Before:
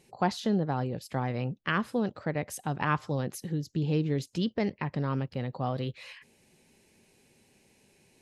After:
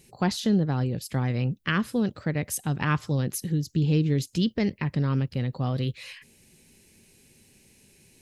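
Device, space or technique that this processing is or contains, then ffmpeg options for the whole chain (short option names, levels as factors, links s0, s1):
smiley-face EQ: -af "lowshelf=f=87:g=7.5,equalizer=f=790:t=o:w=1.6:g=-8.5,highshelf=f=8400:g=8.5,volume=1.78"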